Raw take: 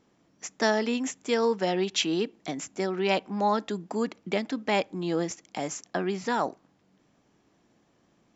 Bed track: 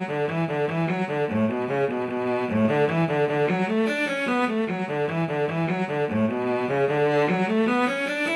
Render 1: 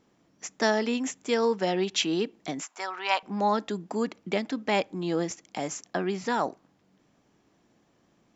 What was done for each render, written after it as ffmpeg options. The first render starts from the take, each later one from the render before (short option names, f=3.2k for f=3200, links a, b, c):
-filter_complex "[0:a]asettb=1/sr,asplit=3[a][b][c];[a]atrim=end=2.634[d];[b]atrim=start=2.63:end=3.23,asetpts=PTS-STARTPTS,afade=t=in:d=0.004:c=qsin,afade=t=out:st=0.596:d=0.004:c=qsin,highpass=f=1k:t=q:w=2.6[e];[c]atrim=start=3.226[f];[d][e]acrossfade=d=0.004:c1=hsin:c2=qsin[g];[g][f]acrossfade=d=0.004:c1=qsin:c2=hsin"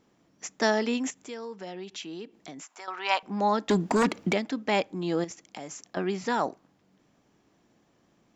-filter_complex "[0:a]asettb=1/sr,asplit=3[a][b][c];[a]atrim=end=1.104[d];[b]atrim=start=1.1:end=2.88,asetpts=PTS-STARTPTS,afade=t=in:d=0.004:c=qsin,afade=t=out:st=1.776:d=0.004:c=qsin,acompressor=threshold=-46dB:ratio=2:attack=3.2:release=140:knee=1:detection=peak[e];[c]atrim=start=2.876[f];[d][e]acrossfade=d=0.004:c1=hsin:c2=qsin[g];[g][f]acrossfade=d=0.004:c1=qsin:c2=hsin,asettb=1/sr,asplit=3[h][i][j];[h]atrim=end=3.694[k];[i]atrim=start=3.69:end=4.33,asetpts=PTS-STARTPTS,afade=t=in:d=0.004:c=qsin,afade=t=out:st=0.636:d=0.004:c=qsin,aeval=exprs='0.133*sin(PI/2*2.51*val(0)/0.133)':c=same[l];[j]atrim=start=4.326[m];[k][l]acrossfade=d=0.004:c1=hsin:c2=qsin[n];[n][m]acrossfade=d=0.004:c1=qsin:c2=hsin,asettb=1/sr,asplit=3[o][p][q];[o]atrim=end=5.244[r];[p]atrim=start=5.24:end=5.97,asetpts=PTS-STARTPTS,afade=t=in:d=0.004:c=qsin,afade=t=out:st=0.726:d=0.004:c=qsin,acompressor=threshold=-39dB:ratio=2.5:attack=3.2:release=140:knee=1:detection=peak[s];[q]atrim=start=5.966[t];[r][s]acrossfade=d=0.004:c1=hsin:c2=qsin[u];[u][t]acrossfade=d=0.004:c1=qsin:c2=hsin"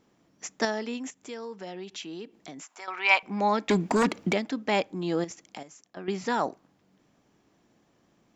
-filter_complex "[0:a]asettb=1/sr,asplit=3[a][b][c];[a]atrim=end=2.824[d];[b]atrim=start=2.82:end=3.88,asetpts=PTS-STARTPTS,afade=t=in:d=0.004:c=qsin,afade=t=out:st=1.056:d=0.004:c=qsin,equalizer=f=2.3k:t=o:w=0.29:g=12.5[e];[c]atrim=start=3.876[f];[d][e]acrossfade=d=0.004:c1=hsin:c2=qsin[g];[g][f]acrossfade=d=0.004:c1=qsin:c2=hsin,asplit=5[h][i][j][k][l];[h]atrim=end=0.652[m];[i]atrim=start=0.648:end=1.232,asetpts=PTS-STARTPTS,volume=-6dB[n];[j]atrim=start=1.228:end=5.632[o];[k]atrim=start=5.628:end=6.082,asetpts=PTS-STARTPTS,volume=-10dB[p];[l]atrim=start=6.078[q];[m][n]acrossfade=d=0.004:c1=hsin:c2=hsin[r];[r][o]acrossfade=d=0.004:c1=hsin:c2=hsin[s];[s][p]acrossfade=d=0.004:c1=hsin:c2=hsin[t];[t][q]acrossfade=d=0.004:c1=hsin:c2=hsin"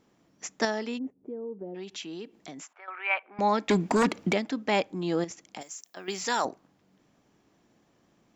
-filter_complex "[0:a]asplit=3[a][b][c];[a]afade=t=out:st=0.97:d=0.02[d];[b]lowpass=f=400:t=q:w=1.6,afade=t=in:st=0.97:d=0.02,afade=t=out:st=1.74:d=0.02[e];[c]afade=t=in:st=1.74:d=0.02[f];[d][e][f]amix=inputs=3:normalize=0,asettb=1/sr,asplit=3[g][h][i];[g]atrim=end=2.734[j];[h]atrim=start=2.73:end=3.39,asetpts=PTS-STARTPTS,afade=t=in:d=0.004:c=qsin,afade=t=out:st=0.656:d=0.004:c=qsin,highpass=f=450:w=0.5412,highpass=f=450:w=1.3066,equalizer=f=460:t=q:w=4:g=-7,equalizer=f=730:t=q:w=4:g=-5,equalizer=f=1k:t=q:w=4:g=-10,equalizer=f=2k:t=q:w=4:g=-4,lowpass=f=2.2k:w=0.5412,lowpass=f=2.2k:w=1.3066[k];[i]atrim=start=3.386[l];[j][k]acrossfade=d=0.004:c1=hsin:c2=qsin[m];[m][l]acrossfade=d=0.004:c1=qsin:c2=hsin,asettb=1/sr,asplit=3[n][o][p];[n]atrim=end=5.614[q];[o]atrim=start=5.61:end=6.45,asetpts=PTS-STARTPTS,afade=t=in:d=0.004:c=qsin,afade=t=out:st=0.836:d=0.004:c=qsin,aemphasis=mode=production:type=riaa[r];[p]atrim=start=6.446[s];[q][r]acrossfade=d=0.004:c1=hsin:c2=qsin[t];[t][s]acrossfade=d=0.004:c1=qsin:c2=hsin"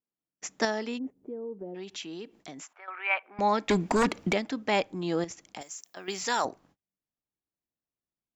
-af "agate=range=-33dB:threshold=-58dB:ratio=16:detection=peak,asubboost=boost=3:cutoff=98"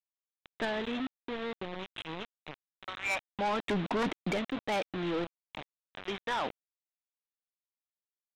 -af "aresample=8000,acrusher=bits=5:mix=0:aa=0.000001,aresample=44100,asoftclip=type=tanh:threshold=-27dB"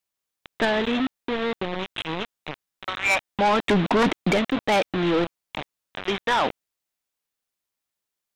-af "volume=11dB"